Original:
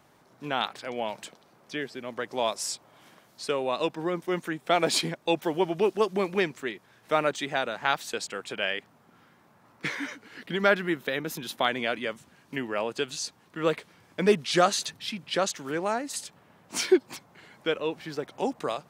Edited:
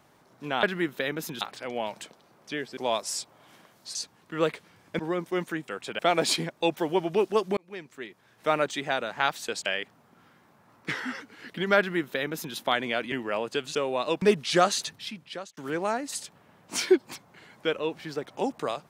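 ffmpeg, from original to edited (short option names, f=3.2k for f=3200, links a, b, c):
-filter_complex "[0:a]asplit=16[a][b][c][d][e][f][g][h][i][j][k][l][m][n][o][p];[a]atrim=end=0.632[q];[b]atrim=start=10.708:end=11.492[r];[c]atrim=start=0.628:end=1.992[s];[d]atrim=start=2.298:end=3.482[t];[e]atrim=start=13.188:end=14.232[u];[f]atrim=start=3.948:end=4.642[v];[g]atrim=start=8.308:end=8.622[w];[h]atrim=start=4.638:end=6.22,asetpts=PTS-STARTPTS,afade=t=out:st=1.578:d=0.004:c=hsin[x];[i]atrim=start=6.22:end=8.312,asetpts=PTS-STARTPTS,afade=t=in:d=0.96[y];[j]atrim=start=8.618:end=9.874[z];[k]atrim=start=9.87:end=10.14,asetpts=PTS-STARTPTS,asetrate=39690,aresample=44100[aa];[l]atrim=start=10.136:end=12.052[ab];[m]atrim=start=12.558:end=13.192[ac];[n]atrim=start=3.478:end=3.952[ad];[o]atrim=start=14.228:end=15.58,asetpts=PTS-STARTPTS,afade=t=out:st=0.642:d=0.71[ae];[p]atrim=start=15.58,asetpts=PTS-STARTPTS,afade=t=in:d=0.004:c=hsin[af];[q][r]acrossfade=d=0.004:c1=hsin:c2=hsin[ag];[ag][s]acrossfade=d=0.004:c1=hsin:c2=hsin[ah];[ah][t]acrossfade=d=0.004:c1=hsin:c2=hsin[ai];[ai][u]acrossfade=d=0.004:c1=hsin:c2=hsin[aj];[aj][v]acrossfade=d=0.004:c1=hsin:c2=hsin[ak];[ak][w]acrossfade=d=0.004:c1=hsin:c2=hsin[al];[x][y]concat=n=2:v=0:a=1[am];[al][am]acrossfade=d=0.004:c1=hsin:c2=hsin[an];[an][z]acrossfade=d=0.004:c1=hsin:c2=hsin[ao];[ao][aa]acrossfade=d=0.004:c1=hsin:c2=hsin[ap];[ap][ab]acrossfade=d=0.004:c1=hsin:c2=hsin[aq];[aq][ac]acrossfade=d=0.004:c1=hsin:c2=hsin[ar];[ar][ad]acrossfade=d=0.004:c1=hsin:c2=hsin[as];[ae][af]concat=n=2:v=0:a=1[at];[as][at]acrossfade=d=0.004:c1=hsin:c2=hsin"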